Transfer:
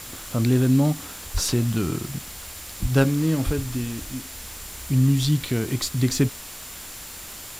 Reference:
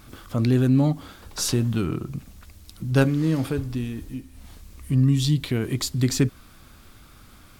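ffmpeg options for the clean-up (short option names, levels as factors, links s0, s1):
-filter_complex "[0:a]bandreject=f=7200:w=30,asplit=3[s0][s1][s2];[s0]afade=t=out:st=1.33:d=0.02[s3];[s1]highpass=f=140:w=0.5412,highpass=f=140:w=1.3066,afade=t=in:st=1.33:d=0.02,afade=t=out:st=1.45:d=0.02[s4];[s2]afade=t=in:st=1.45:d=0.02[s5];[s3][s4][s5]amix=inputs=3:normalize=0,asplit=3[s6][s7][s8];[s6]afade=t=out:st=2.81:d=0.02[s9];[s7]highpass=f=140:w=0.5412,highpass=f=140:w=1.3066,afade=t=in:st=2.81:d=0.02,afade=t=out:st=2.93:d=0.02[s10];[s8]afade=t=in:st=2.93:d=0.02[s11];[s9][s10][s11]amix=inputs=3:normalize=0,asplit=3[s12][s13][s14];[s12]afade=t=out:st=3.45:d=0.02[s15];[s13]highpass=f=140:w=0.5412,highpass=f=140:w=1.3066,afade=t=in:st=3.45:d=0.02,afade=t=out:st=3.57:d=0.02[s16];[s14]afade=t=in:st=3.57:d=0.02[s17];[s15][s16][s17]amix=inputs=3:normalize=0,afwtdn=0.013"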